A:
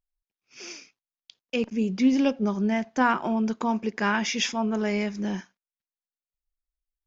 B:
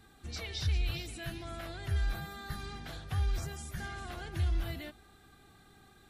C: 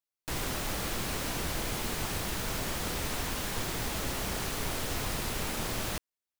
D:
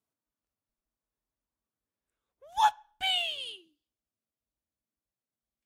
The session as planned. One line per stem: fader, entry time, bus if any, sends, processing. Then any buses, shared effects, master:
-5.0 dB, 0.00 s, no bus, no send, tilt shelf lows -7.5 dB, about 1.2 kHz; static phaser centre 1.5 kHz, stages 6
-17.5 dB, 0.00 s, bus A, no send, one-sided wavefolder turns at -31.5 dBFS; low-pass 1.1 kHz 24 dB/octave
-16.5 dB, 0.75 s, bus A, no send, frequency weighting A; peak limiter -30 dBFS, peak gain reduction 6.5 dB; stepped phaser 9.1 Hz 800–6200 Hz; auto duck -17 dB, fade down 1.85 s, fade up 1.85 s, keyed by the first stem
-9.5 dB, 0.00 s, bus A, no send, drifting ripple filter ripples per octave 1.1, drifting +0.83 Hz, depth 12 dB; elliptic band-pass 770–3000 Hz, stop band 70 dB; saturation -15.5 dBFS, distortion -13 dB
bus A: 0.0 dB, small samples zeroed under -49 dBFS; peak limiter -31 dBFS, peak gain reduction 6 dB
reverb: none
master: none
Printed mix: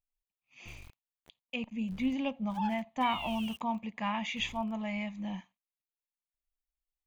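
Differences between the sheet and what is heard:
stem A: missing tilt shelf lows -7.5 dB, about 1.2 kHz; stem C: entry 0.75 s -> 0.40 s; stem D -9.5 dB -> -3.0 dB

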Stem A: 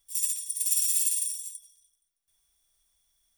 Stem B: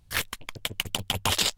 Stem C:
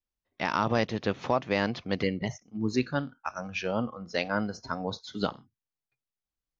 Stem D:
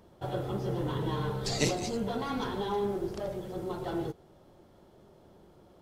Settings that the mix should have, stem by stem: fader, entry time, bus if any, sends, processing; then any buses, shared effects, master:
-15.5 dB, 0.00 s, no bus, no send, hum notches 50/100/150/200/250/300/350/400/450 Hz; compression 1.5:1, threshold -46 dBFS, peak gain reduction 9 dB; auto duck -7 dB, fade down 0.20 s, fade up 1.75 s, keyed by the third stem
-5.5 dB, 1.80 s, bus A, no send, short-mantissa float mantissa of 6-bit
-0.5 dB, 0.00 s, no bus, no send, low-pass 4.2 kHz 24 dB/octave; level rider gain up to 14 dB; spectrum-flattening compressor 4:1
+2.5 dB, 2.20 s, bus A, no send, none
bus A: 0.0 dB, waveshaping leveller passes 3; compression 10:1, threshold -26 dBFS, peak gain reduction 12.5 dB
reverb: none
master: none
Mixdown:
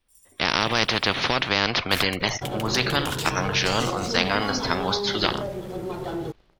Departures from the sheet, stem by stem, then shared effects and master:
stem B -5.5 dB -> -12.0 dB; stem D +2.5 dB -> -5.5 dB

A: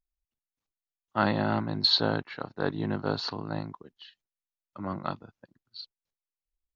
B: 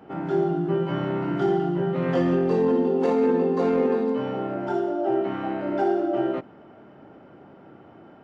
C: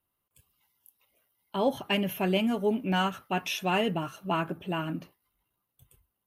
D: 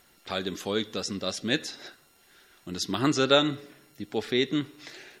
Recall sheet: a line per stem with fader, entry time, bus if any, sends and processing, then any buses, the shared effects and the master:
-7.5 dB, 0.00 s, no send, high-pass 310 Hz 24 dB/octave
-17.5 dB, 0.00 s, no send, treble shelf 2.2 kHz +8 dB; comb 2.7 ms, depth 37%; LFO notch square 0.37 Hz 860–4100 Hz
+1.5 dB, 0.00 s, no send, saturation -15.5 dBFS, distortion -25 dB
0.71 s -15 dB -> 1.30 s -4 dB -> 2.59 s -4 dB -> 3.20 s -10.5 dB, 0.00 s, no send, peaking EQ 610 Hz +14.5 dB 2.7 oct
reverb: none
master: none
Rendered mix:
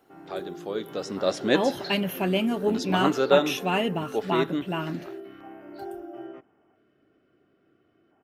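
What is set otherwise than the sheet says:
stem A -7.5 dB -> -17.5 dB; stem C: missing saturation -15.5 dBFS, distortion -25 dB

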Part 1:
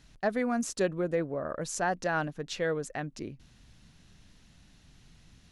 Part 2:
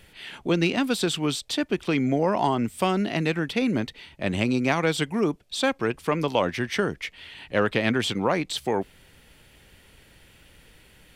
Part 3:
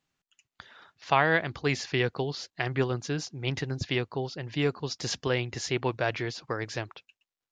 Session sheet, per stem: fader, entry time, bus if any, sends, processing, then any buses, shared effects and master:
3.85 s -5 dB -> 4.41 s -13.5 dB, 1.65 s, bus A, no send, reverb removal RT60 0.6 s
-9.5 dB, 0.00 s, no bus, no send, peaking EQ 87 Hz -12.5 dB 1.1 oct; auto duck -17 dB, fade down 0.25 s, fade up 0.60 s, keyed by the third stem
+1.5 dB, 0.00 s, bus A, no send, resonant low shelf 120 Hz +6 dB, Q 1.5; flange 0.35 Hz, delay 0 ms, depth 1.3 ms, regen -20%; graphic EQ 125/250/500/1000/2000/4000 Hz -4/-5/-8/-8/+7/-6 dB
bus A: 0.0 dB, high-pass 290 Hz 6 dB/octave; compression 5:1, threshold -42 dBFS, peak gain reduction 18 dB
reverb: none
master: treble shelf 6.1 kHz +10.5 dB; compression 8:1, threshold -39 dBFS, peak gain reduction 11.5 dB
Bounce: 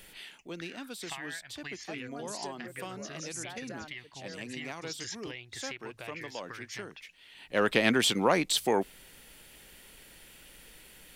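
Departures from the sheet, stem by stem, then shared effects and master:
stem 2 -9.5 dB -> -1.0 dB; master: missing compression 8:1, threshold -39 dBFS, peak gain reduction 11.5 dB

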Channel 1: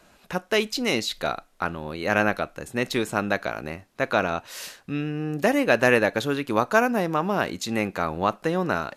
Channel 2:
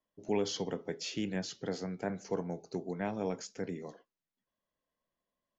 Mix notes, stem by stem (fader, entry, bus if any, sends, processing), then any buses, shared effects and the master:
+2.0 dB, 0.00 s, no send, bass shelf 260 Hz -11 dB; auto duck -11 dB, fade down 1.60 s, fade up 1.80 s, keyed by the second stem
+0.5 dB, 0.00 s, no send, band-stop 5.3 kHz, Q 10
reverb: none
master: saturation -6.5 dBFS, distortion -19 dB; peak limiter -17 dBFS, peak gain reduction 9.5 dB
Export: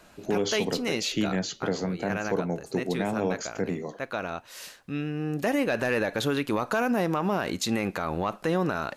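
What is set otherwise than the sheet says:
stem 1: missing bass shelf 260 Hz -11 dB; stem 2 +0.5 dB -> +9.0 dB

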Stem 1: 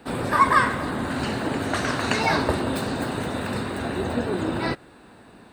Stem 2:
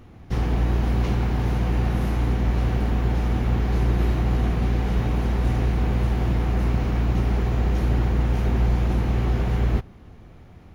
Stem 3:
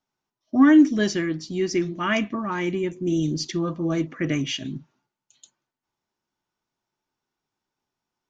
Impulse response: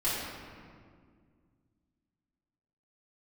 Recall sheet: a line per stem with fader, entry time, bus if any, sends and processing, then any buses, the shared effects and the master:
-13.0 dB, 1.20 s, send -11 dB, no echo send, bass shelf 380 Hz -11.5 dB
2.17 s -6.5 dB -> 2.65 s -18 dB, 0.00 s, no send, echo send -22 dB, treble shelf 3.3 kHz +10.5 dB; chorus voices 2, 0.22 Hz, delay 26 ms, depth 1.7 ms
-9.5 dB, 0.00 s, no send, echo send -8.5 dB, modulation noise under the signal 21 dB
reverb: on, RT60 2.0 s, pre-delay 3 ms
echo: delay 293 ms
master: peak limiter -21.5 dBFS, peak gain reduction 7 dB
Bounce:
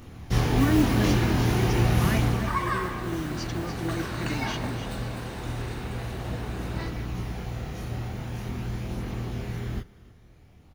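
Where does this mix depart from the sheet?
stem 1: entry 1.20 s -> 2.15 s; stem 2 -6.5 dB -> +5.0 dB; master: missing peak limiter -21.5 dBFS, peak gain reduction 7 dB

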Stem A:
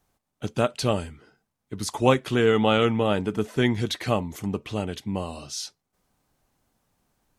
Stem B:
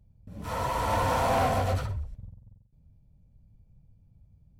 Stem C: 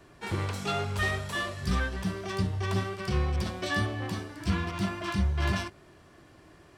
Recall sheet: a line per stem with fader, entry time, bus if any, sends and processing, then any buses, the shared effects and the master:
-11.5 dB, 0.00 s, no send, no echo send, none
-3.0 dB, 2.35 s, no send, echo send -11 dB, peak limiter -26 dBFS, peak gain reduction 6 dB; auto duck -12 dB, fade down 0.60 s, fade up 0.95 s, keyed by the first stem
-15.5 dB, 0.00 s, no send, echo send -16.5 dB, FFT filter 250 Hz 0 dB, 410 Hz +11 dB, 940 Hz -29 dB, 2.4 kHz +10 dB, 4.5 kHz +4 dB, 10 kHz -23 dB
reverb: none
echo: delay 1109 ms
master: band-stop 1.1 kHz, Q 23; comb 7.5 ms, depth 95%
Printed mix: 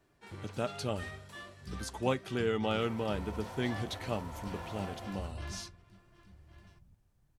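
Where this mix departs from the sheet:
stem C: missing FFT filter 250 Hz 0 dB, 410 Hz +11 dB, 940 Hz -29 dB, 2.4 kHz +10 dB, 4.5 kHz +4 dB, 10 kHz -23 dB; master: missing comb 7.5 ms, depth 95%

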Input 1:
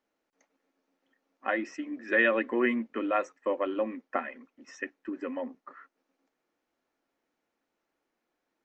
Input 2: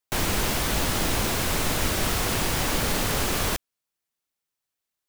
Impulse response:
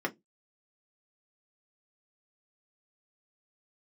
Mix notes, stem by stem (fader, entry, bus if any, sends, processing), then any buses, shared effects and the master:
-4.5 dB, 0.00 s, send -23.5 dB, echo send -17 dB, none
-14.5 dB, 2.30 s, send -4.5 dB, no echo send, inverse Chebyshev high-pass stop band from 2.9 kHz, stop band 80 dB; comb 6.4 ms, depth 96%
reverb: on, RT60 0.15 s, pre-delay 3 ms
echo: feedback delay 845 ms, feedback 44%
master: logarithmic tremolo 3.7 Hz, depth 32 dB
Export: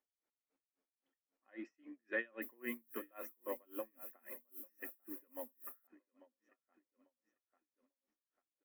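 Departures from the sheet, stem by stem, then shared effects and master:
stem 1 -4.5 dB -> -11.5 dB; stem 2: send off

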